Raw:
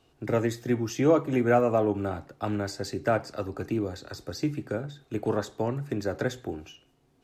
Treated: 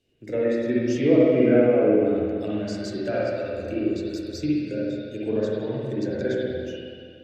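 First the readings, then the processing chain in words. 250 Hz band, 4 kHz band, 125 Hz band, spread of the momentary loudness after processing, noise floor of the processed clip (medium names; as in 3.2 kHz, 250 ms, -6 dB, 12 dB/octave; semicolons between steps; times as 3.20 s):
+6.0 dB, +2.0 dB, 0.0 dB, 13 LU, -44 dBFS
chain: low-pass that closes with the level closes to 2.1 kHz, closed at -20.5 dBFS; de-hum 49.7 Hz, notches 3; spectral noise reduction 8 dB; high-order bell 1 kHz -15.5 dB 1.2 oct; spring tank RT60 2.2 s, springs 47/60 ms, chirp 55 ms, DRR -7 dB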